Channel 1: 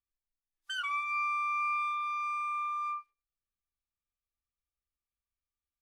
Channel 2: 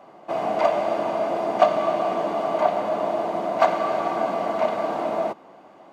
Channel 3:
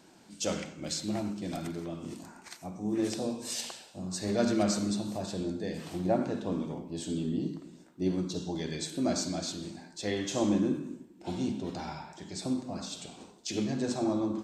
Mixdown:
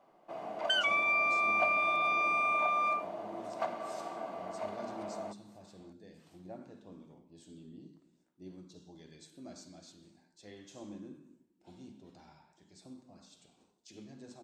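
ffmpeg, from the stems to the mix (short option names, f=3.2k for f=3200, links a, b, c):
-filter_complex "[0:a]equalizer=f=2.8k:t=o:w=2.1:g=13,acompressor=threshold=-27dB:ratio=6,volume=0dB[a];[1:a]volume=-17dB[b];[2:a]adelay=400,volume=-19.5dB[c];[a][b][c]amix=inputs=3:normalize=0"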